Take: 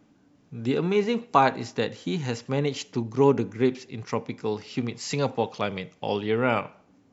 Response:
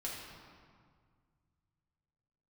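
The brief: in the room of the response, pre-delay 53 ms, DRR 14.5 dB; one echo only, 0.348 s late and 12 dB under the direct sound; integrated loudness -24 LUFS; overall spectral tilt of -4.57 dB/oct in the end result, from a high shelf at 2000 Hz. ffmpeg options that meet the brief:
-filter_complex "[0:a]highshelf=f=2k:g=8.5,aecho=1:1:348:0.251,asplit=2[a][b];[1:a]atrim=start_sample=2205,adelay=53[c];[b][c]afir=irnorm=-1:irlink=0,volume=-15.5dB[d];[a][d]amix=inputs=2:normalize=0,volume=1dB"

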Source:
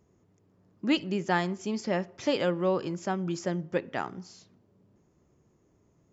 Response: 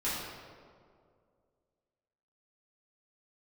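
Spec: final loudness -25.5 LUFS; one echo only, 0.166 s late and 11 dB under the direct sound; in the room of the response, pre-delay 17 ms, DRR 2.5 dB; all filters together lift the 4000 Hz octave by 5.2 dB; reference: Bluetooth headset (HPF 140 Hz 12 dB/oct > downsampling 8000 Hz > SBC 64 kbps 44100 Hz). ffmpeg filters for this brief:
-filter_complex "[0:a]equalizer=f=4k:t=o:g=7.5,aecho=1:1:166:0.282,asplit=2[a][b];[1:a]atrim=start_sample=2205,adelay=17[c];[b][c]afir=irnorm=-1:irlink=0,volume=-9.5dB[d];[a][d]amix=inputs=2:normalize=0,highpass=140,aresample=8000,aresample=44100,volume=1.5dB" -ar 44100 -c:a sbc -b:a 64k

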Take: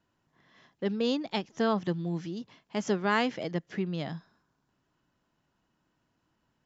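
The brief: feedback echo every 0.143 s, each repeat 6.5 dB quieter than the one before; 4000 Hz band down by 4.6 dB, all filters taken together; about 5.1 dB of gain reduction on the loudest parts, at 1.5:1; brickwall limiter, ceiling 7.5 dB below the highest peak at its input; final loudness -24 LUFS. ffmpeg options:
-af "equalizer=f=4k:t=o:g=-6.5,acompressor=threshold=-37dB:ratio=1.5,alimiter=level_in=3.5dB:limit=-24dB:level=0:latency=1,volume=-3.5dB,aecho=1:1:143|286|429|572|715|858:0.473|0.222|0.105|0.0491|0.0231|0.0109,volume=13.5dB"

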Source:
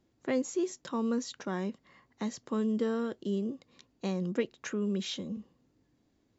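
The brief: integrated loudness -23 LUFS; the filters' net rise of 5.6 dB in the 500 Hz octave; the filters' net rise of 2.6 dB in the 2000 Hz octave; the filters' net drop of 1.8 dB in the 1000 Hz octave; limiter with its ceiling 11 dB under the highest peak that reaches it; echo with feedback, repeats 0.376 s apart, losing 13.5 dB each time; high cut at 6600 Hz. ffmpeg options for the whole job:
-af "lowpass=6.6k,equalizer=f=500:t=o:g=7.5,equalizer=f=1k:t=o:g=-6,equalizer=f=2k:t=o:g=4.5,alimiter=limit=-23.5dB:level=0:latency=1,aecho=1:1:376|752:0.211|0.0444,volume=10.5dB"

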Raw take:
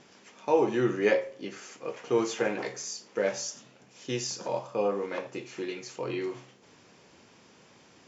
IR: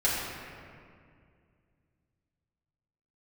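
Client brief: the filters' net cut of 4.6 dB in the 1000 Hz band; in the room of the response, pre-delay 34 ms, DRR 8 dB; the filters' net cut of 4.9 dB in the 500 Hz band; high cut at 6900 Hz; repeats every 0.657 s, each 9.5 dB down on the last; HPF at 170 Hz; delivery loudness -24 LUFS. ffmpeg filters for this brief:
-filter_complex "[0:a]highpass=170,lowpass=6.9k,equalizer=f=500:t=o:g=-5,equalizer=f=1k:t=o:g=-4,aecho=1:1:657|1314|1971|2628:0.335|0.111|0.0365|0.012,asplit=2[a][b];[1:a]atrim=start_sample=2205,adelay=34[c];[b][c]afir=irnorm=-1:irlink=0,volume=-19.5dB[d];[a][d]amix=inputs=2:normalize=0,volume=9.5dB"

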